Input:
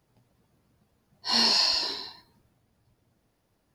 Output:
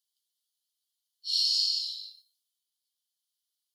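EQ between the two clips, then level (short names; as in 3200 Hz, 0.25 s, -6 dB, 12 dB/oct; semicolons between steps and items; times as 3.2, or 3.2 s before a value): rippled Chebyshev high-pass 3000 Hz, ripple 3 dB; -2.0 dB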